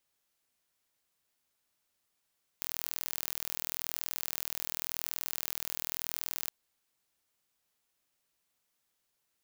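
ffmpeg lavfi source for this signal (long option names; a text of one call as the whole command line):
ffmpeg -f lavfi -i "aevalsrc='0.398*eq(mod(n,1078),0)':duration=3.87:sample_rate=44100" out.wav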